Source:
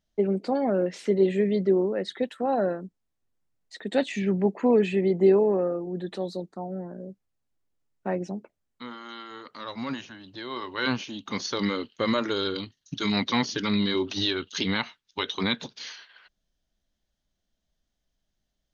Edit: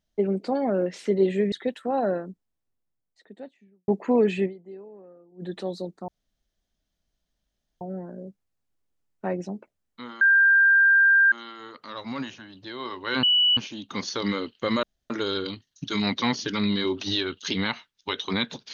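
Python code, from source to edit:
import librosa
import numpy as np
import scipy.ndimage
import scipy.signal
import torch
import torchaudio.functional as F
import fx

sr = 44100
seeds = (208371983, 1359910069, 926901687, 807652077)

y = fx.studio_fade_out(x, sr, start_s=2.64, length_s=1.79)
y = fx.edit(y, sr, fx.cut(start_s=1.52, length_s=0.55),
    fx.fade_down_up(start_s=5.01, length_s=0.97, db=-23.5, fade_s=0.27, curve='exp'),
    fx.insert_room_tone(at_s=6.63, length_s=1.73),
    fx.insert_tone(at_s=9.03, length_s=1.11, hz=1590.0, db=-14.0),
    fx.insert_tone(at_s=10.94, length_s=0.34, hz=2950.0, db=-16.5),
    fx.insert_room_tone(at_s=12.2, length_s=0.27), tone=tone)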